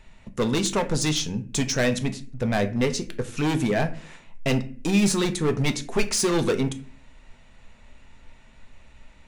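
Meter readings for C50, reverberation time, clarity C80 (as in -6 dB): 15.0 dB, 0.45 s, 19.5 dB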